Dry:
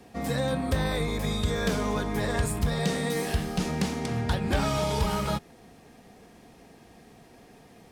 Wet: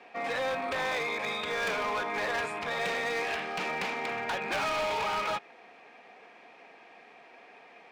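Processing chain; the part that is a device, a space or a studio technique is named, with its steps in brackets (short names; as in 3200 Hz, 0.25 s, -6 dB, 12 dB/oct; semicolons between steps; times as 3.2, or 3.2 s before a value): megaphone (BPF 670–2600 Hz; bell 2400 Hz +9 dB 0.29 oct; hard clip -32.5 dBFS, distortion -10 dB); gain +5 dB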